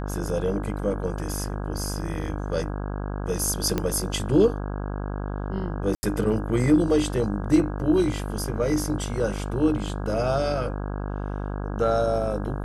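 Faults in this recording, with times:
mains buzz 50 Hz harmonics 33 −30 dBFS
0:03.78: click −11 dBFS
0:05.95–0:06.03: drop-out 80 ms

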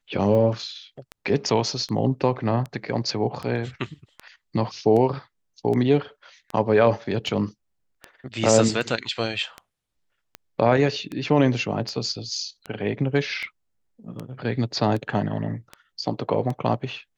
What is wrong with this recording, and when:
scratch tick 78 rpm −19 dBFS

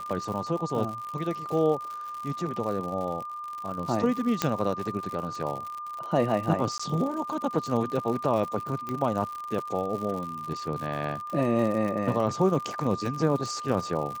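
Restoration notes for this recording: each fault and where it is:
surface crackle 95 per second −33 dBFS
whistle 1,200 Hz −34 dBFS
0:04.42: click −8 dBFS
0:06.78–0:06.79: drop-out 15 ms
0:08.89: click −20 dBFS

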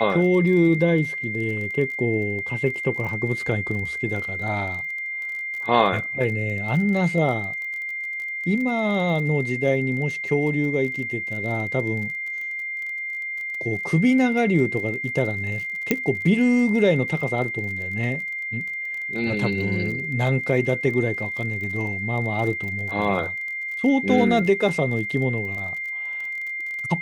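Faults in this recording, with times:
surface crackle 28 per second −31 dBFS
whistle 2,100 Hz −27 dBFS
0:15.91: click −5 dBFS

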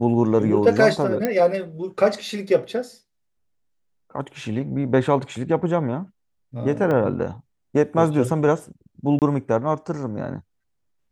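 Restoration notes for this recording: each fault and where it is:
0:01.25: click −9 dBFS
0:06.91: drop-out 2.2 ms
0:09.19–0:09.22: drop-out 28 ms

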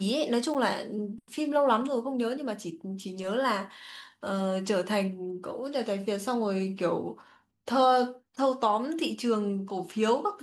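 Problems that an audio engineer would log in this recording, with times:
0:00.54–0:00.55: drop-out 8.1 ms

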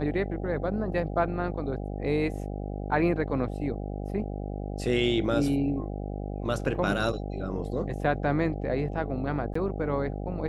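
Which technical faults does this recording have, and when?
mains buzz 50 Hz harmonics 16 −34 dBFS
0:09.54–0:09.55: drop-out 14 ms

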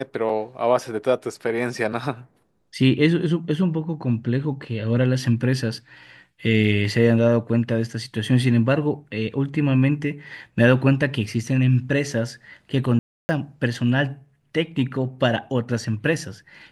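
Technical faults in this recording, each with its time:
0:12.99–0:13.29: drop-out 300 ms

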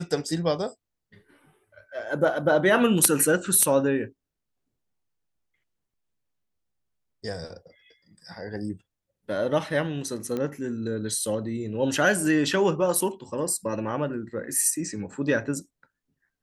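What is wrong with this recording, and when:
0:10.37: click −18 dBFS

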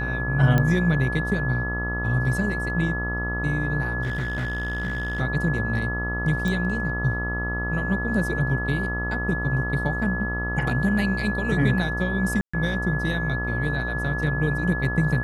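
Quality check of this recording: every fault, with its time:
mains buzz 60 Hz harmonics 23 −29 dBFS
whistle 1,700 Hz −28 dBFS
0:00.58: click −10 dBFS
0:04.02–0:05.21: clipping −23.5 dBFS
0:06.48: click
0:12.41–0:12.54: drop-out 125 ms

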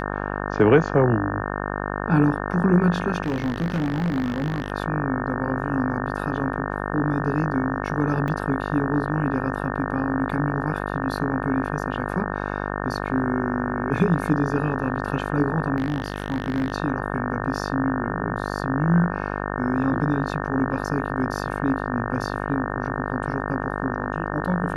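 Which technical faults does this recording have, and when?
mains buzz 50 Hz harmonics 36 −28 dBFS
0:03.22–0:04.72: clipping −20 dBFS
0:08.28: drop-out 3.3 ms
0:15.76–0:16.72: clipping −19 dBFS

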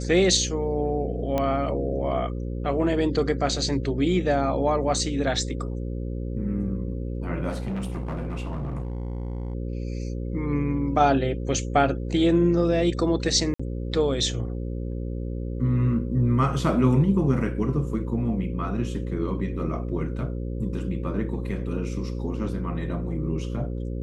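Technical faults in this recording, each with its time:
mains buzz 60 Hz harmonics 9 −30 dBFS
0:01.38: click −13 dBFS
0:07.49–0:09.55: clipping −26 dBFS
0:13.54–0:13.60: drop-out 55 ms

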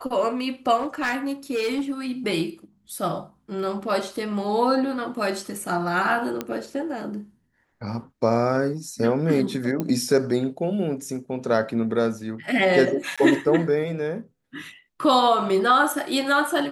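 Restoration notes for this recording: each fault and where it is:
0:00.79–0:01.91: clipping −20.5 dBFS
0:06.41: click −13 dBFS
0:09.80: click −14 dBFS
0:13.16–0:13.18: drop-out 16 ms

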